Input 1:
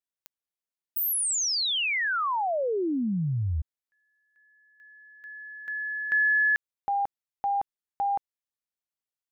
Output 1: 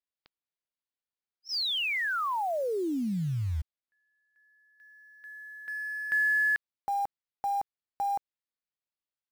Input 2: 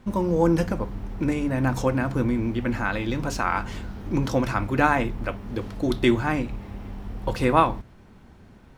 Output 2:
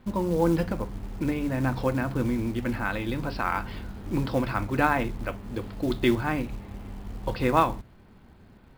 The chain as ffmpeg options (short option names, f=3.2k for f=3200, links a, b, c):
-af "aresample=11025,aresample=44100,acrusher=bits=6:mode=log:mix=0:aa=0.000001,volume=-3dB"